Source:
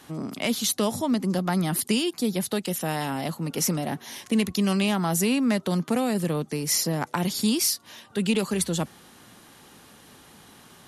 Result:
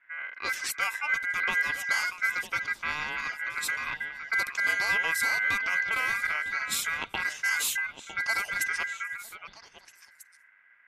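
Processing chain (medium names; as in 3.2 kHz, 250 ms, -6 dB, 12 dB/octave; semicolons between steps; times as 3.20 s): level-controlled noise filter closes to 320 Hz, open at -20 dBFS; repeats whose band climbs or falls 318 ms, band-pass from 200 Hz, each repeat 1.4 oct, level -2.5 dB; ring modulator 1.8 kHz; trim -2.5 dB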